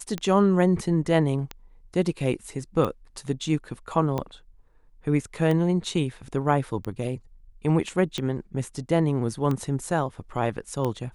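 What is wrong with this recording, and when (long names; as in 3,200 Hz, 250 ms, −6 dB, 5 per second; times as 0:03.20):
scratch tick 45 rpm −16 dBFS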